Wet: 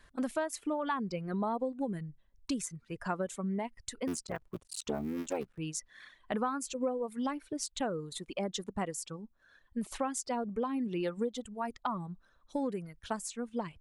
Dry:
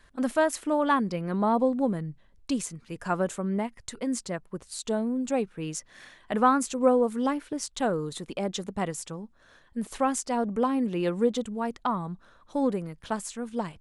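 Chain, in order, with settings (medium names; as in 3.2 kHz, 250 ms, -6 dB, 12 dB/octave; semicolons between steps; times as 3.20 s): 4.07–5.58 s: cycle switcher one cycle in 3, muted; reverb removal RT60 2 s; compression 5:1, threshold -28 dBFS, peak gain reduction 11.5 dB; trim -2 dB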